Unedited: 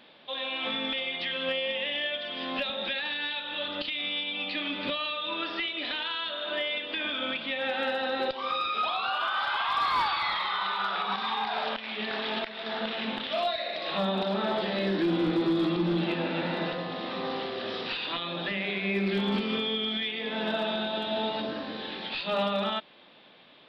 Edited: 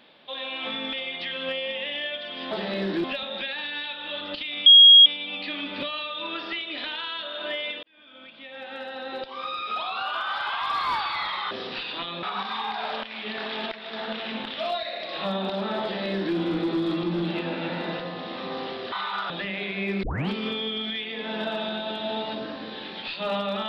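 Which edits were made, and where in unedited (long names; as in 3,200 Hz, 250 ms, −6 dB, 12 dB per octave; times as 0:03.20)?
0:04.13: insert tone 3,280 Hz −7.5 dBFS 0.40 s
0:06.90–0:09.12: fade in
0:10.58–0:10.96: swap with 0:17.65–0:18.37
0:14.56–0:15.09: duplicate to 0:02.51
0:19.10: tape start 0.26 s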